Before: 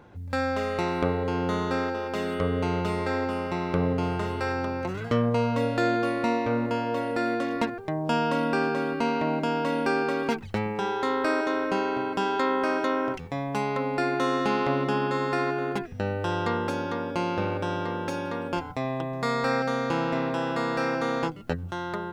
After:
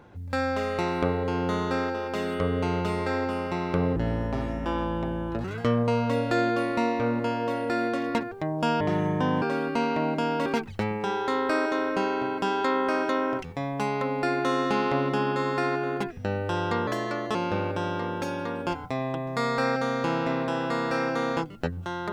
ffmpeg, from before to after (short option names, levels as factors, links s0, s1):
-filter_complex "[0:a]asplit=8[s0][s1][s2][s3][s4][s5][s6][s7];[s0]atrim=end=3.964[s8];[s1]atrim=start=3.96:end=4.91,asetpts=PTS-STARTPTS,asetrate=28224,aresample=44100[s9];[s2]atrim=start=4.906:end=8.274[s10];[s3]atrim=start=8.27:end=8.67,asetpts=PTS-STARTPTS,asetrate=28665,aresample=44100,atrim=end_sample=27138,asetpts=PTS-STARTPTS[s11];[s4]atrim=start=8.666:end=9.712[s12];[s5]atrim=start=10.208:end=16.624[s13];[s6]atrim=start=16.62:end=17.21,asetpts=PTS-STARTPTS,asetrate=54243,aresample=44100[s14];[s7]atrim=start=17.206[s15];[s8][s9]acrossfade=d=0.004:c1=hsin:c2=hsin[s16];[s16][s10]acrossfade=d=0.004:c1=hsin:c2=hsin[s17];[s17][s11]acrossfade=d=0.004:c1=hsin:c2=hsin[s18];[s18][s12]acrossfade=d=0.004:c1=hsin:c2=hsin[s19];[s19][s13]acrossfade=d=0.004:c1=hsin:c2=hsin[s20];[s20][s14]acrossfade=d=0.004:c1=hsin:c2=hsin[s21];[s21][s15]acrossfade=d=0.004:c1=hsin:c2=hsin"